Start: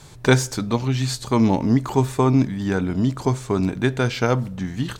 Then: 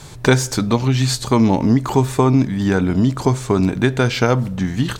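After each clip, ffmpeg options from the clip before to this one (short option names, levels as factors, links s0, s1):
-af "acompressor=threshold=0.1:ratio=2,volume=2.24"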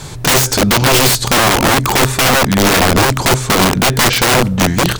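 -af "aeval=exprs='(mod(5.31*val(0)+1,2)-1)/5.31':c=same,volume=2.82"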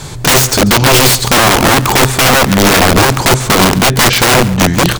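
-af "aecho=1:1:140:0.141,volume=1.41"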